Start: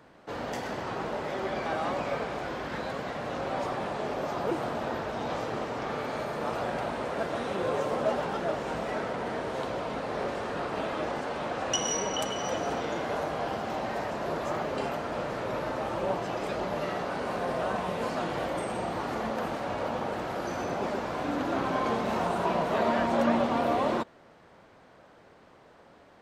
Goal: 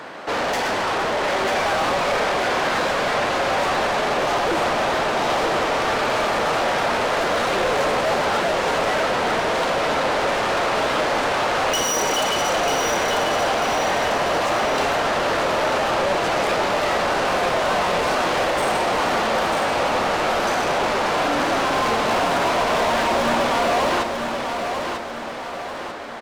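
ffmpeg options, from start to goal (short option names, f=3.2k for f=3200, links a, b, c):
-filter_complex "[0:a]asplit=2[a][b];[b]highpass=f=720:p=1,volume=31dB,asoftclip=type=tanh:threshold=-14dB[c];[a][c]amix=inputs=2:normalize=0,lowpass=f=6.1k:p=1,volume=-6dB,aecho=1:1:943|1886|2829|3772|4715|5658:0.501|0.231|0.106|0.0488|0.0224|0.0103,volume=-1dB"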